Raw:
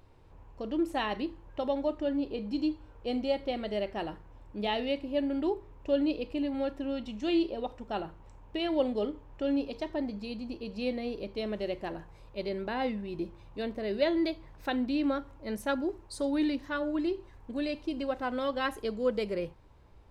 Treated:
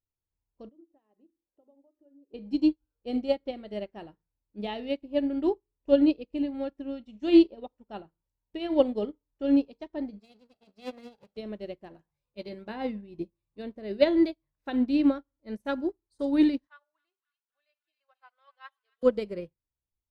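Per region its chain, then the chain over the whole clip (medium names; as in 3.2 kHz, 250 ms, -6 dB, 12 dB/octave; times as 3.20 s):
0.69–2.34 s: compression 4:1, threshold -40 dBFS + band-pass filter 420 Hz, Q 0.78 + hum notches 50/100/150/200/250/300/350 Hz
10.20–11.37 s: comb filter that takes the minimum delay 1.5 ms + high-pass 150 Hz 6 dB/octave + treble shelf 3.1 kHz +6 dB
11.94–12.76 s: treble shelf 2.1 kHz +5 dB + doubling 14 ms -8 dB
16.67–19.03 s: high-pass 1 kHz 24 dB/octave + tilt EQ -3.5 dB/octave + feedback echo behind a high-pass 271 ms, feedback 49%, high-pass 2.1 kHz, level -5 dB
whole clip: bass shelf 360 Hz +8.5 dB; spectral noise reduction 9 dB; upward expansion 2.5:1, over -46 dBFS; trim +6.5 dB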